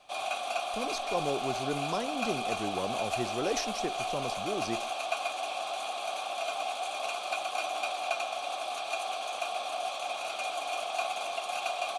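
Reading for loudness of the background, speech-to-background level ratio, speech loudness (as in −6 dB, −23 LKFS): −33.5 LKFS, −2.5 dB, −36.0 LKFS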